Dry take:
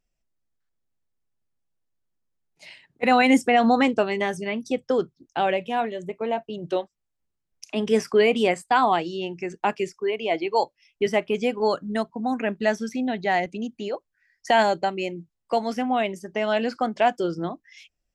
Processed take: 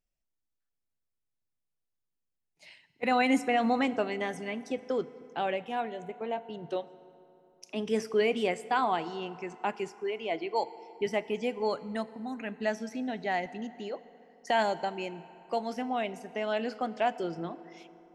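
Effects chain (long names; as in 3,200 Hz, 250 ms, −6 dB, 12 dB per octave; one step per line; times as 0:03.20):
0:12.10–0:12.60: parametric band 570 Hz −7 dB 2 octaves
feedback delay network reverb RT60 3.1 s, high-frequency decay 0.6×, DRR 15 dB
level −8 dB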